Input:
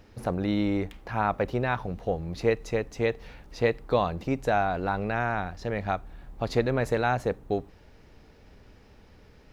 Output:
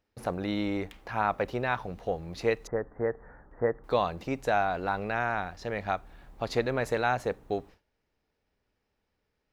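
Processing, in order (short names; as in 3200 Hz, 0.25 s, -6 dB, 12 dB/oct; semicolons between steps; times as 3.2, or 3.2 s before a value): 2.67–3.84 steep low-pass 1800 Hz 72 dB/oct; gate with hold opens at -40 dBFS; low shelf 340 Hz -7.5 dB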